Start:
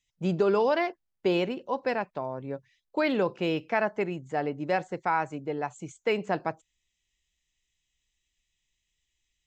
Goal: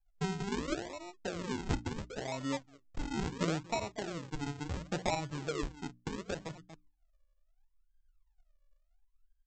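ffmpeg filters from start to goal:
-filter_complex "[0:a]aemphasis=mode=reproduction:type=bsi,asplit=2[a][b];[b]adelay=233.2,volume=-19dB,highshelf=f=4k:g=-5.25[c];[a][c]amix=inputs=2:normalize=0,anlmdn=0.0631,acrossover=split=450|2500[d][e][f];[f]asoftclip=type=tanh:threshold=-39dB[g];[d][e][g]amix=inputs=3:normalize=0,bandreject=f=380:w=12,acompressor=threshold=-28dB:ratio=8,aphaser=in_gain=1:out_gain=1:delay=3.6:decay=0.56:speed=0.59:type=sinusoidal,aresample=16000,acrusher=samples=19:mix=1:aa=0.000001:lfo=1:lforange=19:lforate=0.72,aresample=44100,bandreject=f=60:t=h:w=6,bandreject=f=120:t=h:w=6,bandreject=f=180:t=h:w=6,bandreject=f=240:t=h:w=6,bandreject=f=300:t=h:w=6,volume=-5.5dB"

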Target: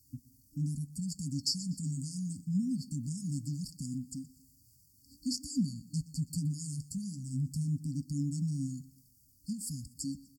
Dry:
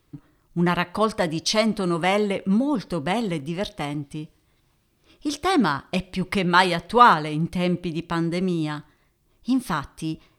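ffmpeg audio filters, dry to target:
-af "asetrate=38170,aresample=44100,atempo=1.15535,highpass=70,bass=f=250:g=4,treble=f=4k:g=14,acompressor=threshold=-40dB:ratio=1.5,flanger=delay=2:depth=7.9:regen=-48:speed=0.21:shape=triangular,afftfilt=real='re*(1-between(b*sr/4096,300,4400))':imag='im*(1-between(b*sr/4096,300,4400))':win_size=4096:overlap=0.75,aecho=1:1:122|244|366:0.1|0.044|0.0194"

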